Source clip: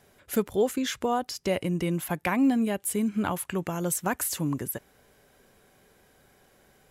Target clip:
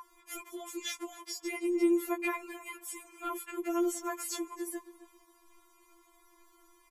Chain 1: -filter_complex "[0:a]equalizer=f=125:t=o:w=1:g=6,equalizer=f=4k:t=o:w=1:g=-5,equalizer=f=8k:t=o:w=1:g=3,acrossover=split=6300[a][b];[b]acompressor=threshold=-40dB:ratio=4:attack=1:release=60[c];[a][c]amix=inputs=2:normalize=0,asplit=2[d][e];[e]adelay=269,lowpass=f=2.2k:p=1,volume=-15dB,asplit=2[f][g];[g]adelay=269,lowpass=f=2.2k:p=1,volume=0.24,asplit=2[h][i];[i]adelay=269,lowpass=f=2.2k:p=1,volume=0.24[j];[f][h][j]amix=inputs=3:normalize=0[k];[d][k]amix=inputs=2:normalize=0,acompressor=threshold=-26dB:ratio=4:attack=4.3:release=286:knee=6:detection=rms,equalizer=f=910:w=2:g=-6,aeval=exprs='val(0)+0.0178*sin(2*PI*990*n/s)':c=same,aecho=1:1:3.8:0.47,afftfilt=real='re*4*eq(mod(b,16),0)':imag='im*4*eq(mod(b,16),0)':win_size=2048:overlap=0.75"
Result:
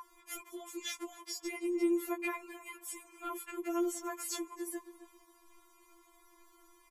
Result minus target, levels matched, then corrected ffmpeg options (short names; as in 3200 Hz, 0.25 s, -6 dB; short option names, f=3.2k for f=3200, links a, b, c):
compressor: peak gain reduction +5 dB
-filter_complex "[0:a]equalizer=f=125:t=o:w=1:g=6,equalizer=f=4k:t=o:w=1:g=-5,equalizer=f=8k:t=o:w=1:g=3,acrossover=split=6300[a][b];[b]acompressor=threshold=-40dB:ratio=4:attack=1:release=60[c];[a][c]amix=inputs=2:normalize=0,asplit=2[d][e];[e]adelay=269,lowpass=f=2.2k:p=1,volume=-15dB,asplit=2[f][g];[g]adelay=269,lowpass=f=2.2k:p=1,volume=0.24,asplit=2[h][i];[i]adelay=269,lowpass=f=2.2k:p=1,volume=0.24[j];[f][h][j]amix=inputs=3:normalize=0[k];[d][k]amix=inputs=2:normalize=0,acompressor=threshold=-19.5dB:ratio=4:attack=4.3:release=286:knee=6:detection=rms,equalizer=f=910:w=2:g=-6,aeval=exprs='val(0)+0.0178*sin(2*PI*990*n/s)':c=same,aecho=1:1:3.8:0.47,afftfilt=real='re*4*eq(mod(b,16),0)':imag='im*4*eq(mod(b,16),0)':win_size=2048:overlap=0.75"